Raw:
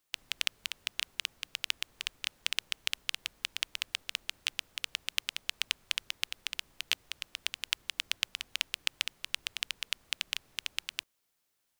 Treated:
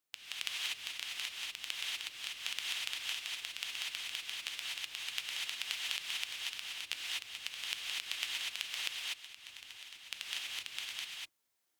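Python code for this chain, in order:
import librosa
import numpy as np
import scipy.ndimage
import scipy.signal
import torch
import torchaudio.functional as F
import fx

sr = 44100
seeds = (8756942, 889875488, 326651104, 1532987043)

y = fx.highpass(x, sr, hz=97.0, slope=6)
y = fx.level_steps(y, sr, step_db=22, at=(8.91, 10.02))
y = fx.rev_gated(y, sr, seeds[0], gate_ms=270, shape='rising', drr_db=-5.0)
y = F.gain(torch.from_numpy(y), -8.5).numpy()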